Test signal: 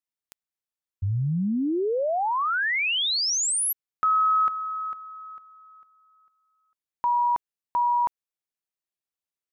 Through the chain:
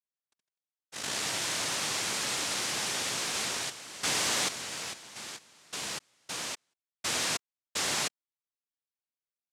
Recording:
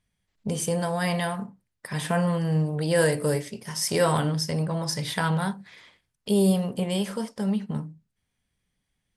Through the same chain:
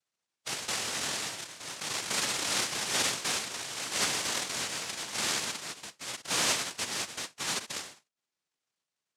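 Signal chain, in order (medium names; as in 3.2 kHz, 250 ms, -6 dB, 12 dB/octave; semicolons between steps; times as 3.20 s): ever faster or slower copies 137 ms, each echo +4 st, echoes 3, each echo -6 dB; noise-vocoded speech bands 1; trim -8.5 dB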